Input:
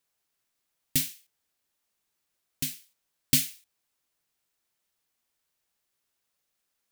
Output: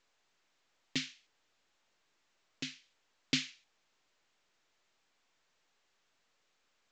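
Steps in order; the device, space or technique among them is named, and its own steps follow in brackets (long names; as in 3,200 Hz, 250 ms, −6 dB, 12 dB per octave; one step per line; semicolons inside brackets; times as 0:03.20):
telephone (band-pass filter 280–3,600 Hz; mu-law 128 kbit/s 16,000 Hz)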